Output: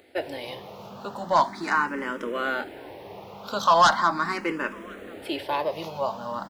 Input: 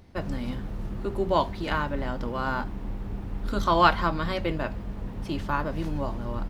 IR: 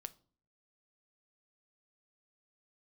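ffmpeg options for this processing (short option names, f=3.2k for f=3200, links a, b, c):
-filter_complex "[0:a]highpass=390,aeval=exprs='0.562*sin(PI/2*3.16*val(0)/0.562)':c=same,asplit=2[a][b];[b]adelay=1050,volume=-21dB,highshelf=f=4k:g=-23.6[c];[a][c]amix=inputs=2:normalize=0,asplit=2[d][e];[e]afreqshift=0.39[f];[d][f]amix=inputs=2:normalize=1,volume=-5.5dB"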